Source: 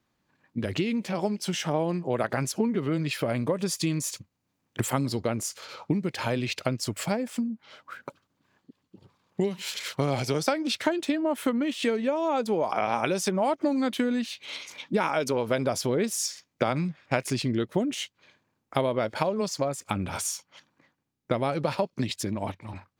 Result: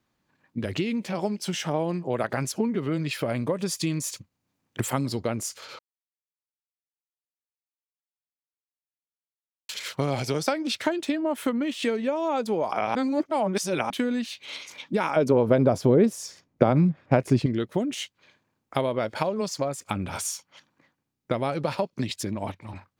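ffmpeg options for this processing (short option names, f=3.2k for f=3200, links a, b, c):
-filter_complex "[0:a]asettb=1/sr,asplit=3[a][b][c];[a]atrim=end=15.164[d];[b]atrim=start=15.16:end=17.46,asetpts=PTS-STARTPTS,afade=t=in:d=0.004:c=qsin,afade=t=out:st=2.296:d=0.004:c=qsin,tiltshelf=f=1.3k:g=9[e];[c]atrim=start=17.456[f];[d][e]acrossfade=d=0.004:c1=hsin:c2=qsin[g];[g][f]acrossfade=d=0.004:c1=qsin:c2=hsin,asplit=5[h][i][j][k][l];[h]atrim=end=5.79,asetpts=PTS-STARTPTS,afade=t=out:st=5.786:d=0.004:c=hsin[m];[i]atrim=start=5.79:end=9.69,asetpts=PTS-STARTPTS,volume=0[n];[j]atrim=start=9.69:end=12.952,asetpts=PTS-STARTPTS,afade=t=in:d=0.004:c=hsin[o];[k]atrim=start=12.948:end=13.902,asetpts=PTS-STARTPTS,areverse[p];[l]atrim=start=13.898[q];[m][n][o]concat=n=3:v=0:a=1[r];[r][p]acrossfade=d=0.004:c1=hsin:c2=hsin[s];[s][q]acrossfade=d=0.004:c1=hsin:c2=hsin"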